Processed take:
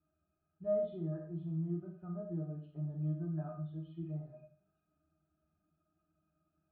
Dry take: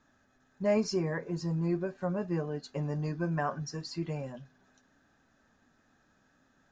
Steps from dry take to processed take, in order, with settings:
hearing-aid frequency compression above 1,500 Hz 1.5 to 1
resonances in every octave D#, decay 0.16 s
four-comb reverb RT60 0.48 s, combs from 31 ms, DRR 2.5 dB
level −2 dB

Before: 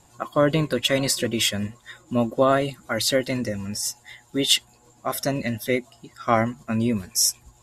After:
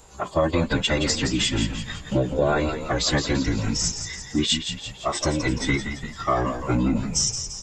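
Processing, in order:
downward compressor 3 to 1, threshold −28 dBFS, peak gain reduction 11 dB
phase-vocoder pitch shift with formants kept −10.5 semitones
echo with shifted repeats 170 ms, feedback 53%, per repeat −61 Hz, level −8 dB
level +7.5 dB

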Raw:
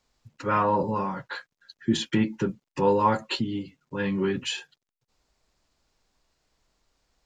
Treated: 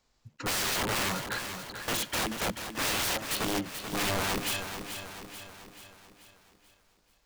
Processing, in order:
wrap-around overflow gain 25 dB
feedback echo at a low word length 435 ms, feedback 55%, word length 11 bits, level −8.5 dB

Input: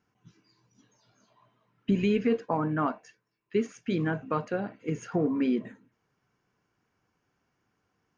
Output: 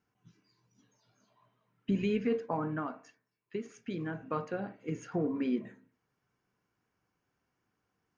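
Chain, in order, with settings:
0:02.78–0:04.30: downward compressor, threshold −28 dBFS, peak gain reduction 7.5 dB
on a send: linear-phase brick-wall low-pass 2,600 Hz + convolution reverb RT60 0.40 s, pre-delay 12 ms, DRR 16 dB
on the sum: level −5.5 dB

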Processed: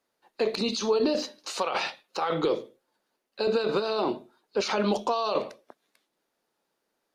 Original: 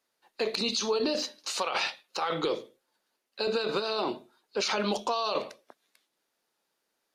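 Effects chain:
tilt shelving filter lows +4 dB, about 1,300 Hz
level +1 dB

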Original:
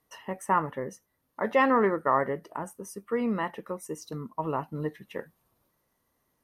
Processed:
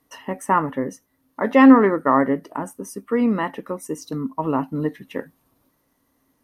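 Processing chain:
parametric band 270 Hz +14 dB 0.23 octaves
level +6 dB

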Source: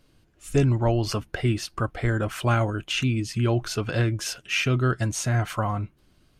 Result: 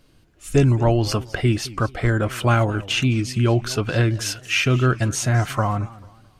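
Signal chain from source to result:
feedback echo with a swinging delay time 219 ms, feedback 33%, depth 199 cents, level −19 dB
level +4.5 dB

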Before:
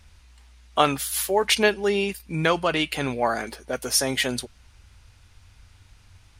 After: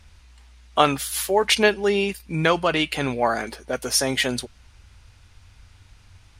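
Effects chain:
high-shelf EQ 12,000 Hz −7 dB
level +2 dB

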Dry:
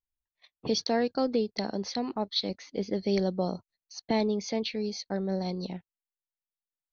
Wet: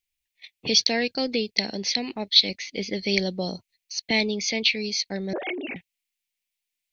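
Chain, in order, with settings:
0:05.33–0:05.76: three sine waves on the formant tracks
high shelf with overshoot 1,700 Hz +10 dB, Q 3
level +1 dB

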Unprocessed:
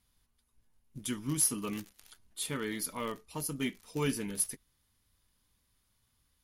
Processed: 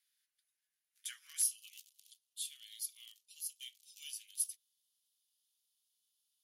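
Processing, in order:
Chebyshev high-pass filter 1,600 Hz, order 4, from 0:01.42 3,000 Hz
level −4 dB

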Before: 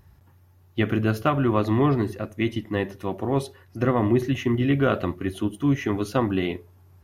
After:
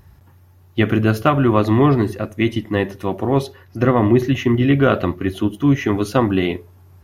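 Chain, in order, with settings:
0:03.38–0:05.87: parametric band 8,800 Hz −10.5 dB 0.33 octaves
level +6.5 dB

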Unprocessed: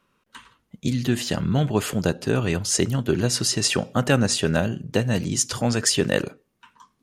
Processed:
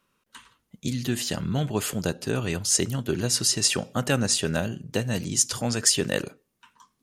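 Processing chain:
high-shelf EQ 4,400 Hz +8.5 dB
level −5 dB

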